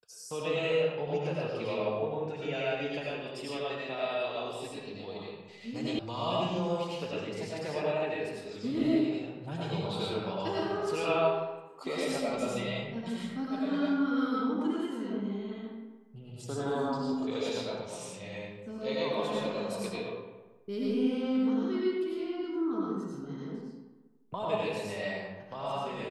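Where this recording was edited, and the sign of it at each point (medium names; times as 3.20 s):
5.99 s: sound stops dead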